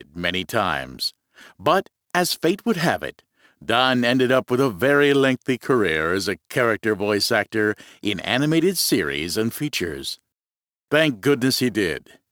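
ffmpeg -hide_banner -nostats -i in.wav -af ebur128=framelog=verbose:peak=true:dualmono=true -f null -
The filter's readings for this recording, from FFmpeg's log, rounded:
Integrated loudness:
  I:         -18.0 LUFS
  Threshold: -28.3 LUFS
Loudness range:
  LRA:         3.6 LU
  Threshold: -38.2 LUFS
  LRA low:   -20.1 LUFS
  LRA high:  -16.6 LUFS
True peak:
  Peak:       -2.5 dBFS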